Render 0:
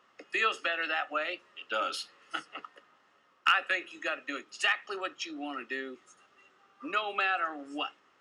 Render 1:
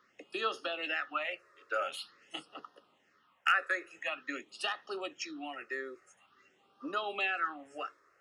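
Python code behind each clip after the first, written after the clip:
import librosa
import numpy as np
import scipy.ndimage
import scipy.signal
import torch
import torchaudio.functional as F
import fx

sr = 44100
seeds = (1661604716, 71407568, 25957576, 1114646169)

y = fx.phaser_stages(x, sr, stages=6, low_hz=210.0, high_hz=2300.0, hz=0.47, feedback_pct=0)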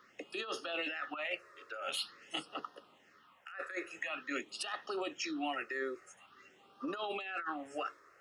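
y = fx.over_compress(x, sr, threshold_db=-40.0, ratio=-1.0)
y = y * librosa.db_to_amplitude(1.0)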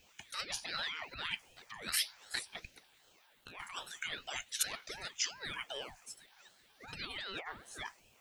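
y = F.preemphasis(torch.from_numpy(x), 0.97).numpy()
y = fx.ring_lfo(y, sr, carrier_hz=830.0, swing_pct=60, hz=2.6)
y = y * librosa.db_to_amplitude(12.5)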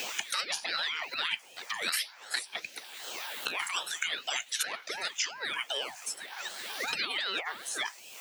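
y = scipy.signal.sosfilt(scipy.signal.bessel(2, 420.0, 'highpass', norm='mag', fs=sr, output='sos'), x)
y = fx.band_squash(y, sr, depth_pct=100)
y = y * librosa.db_to_amplitude(7.5)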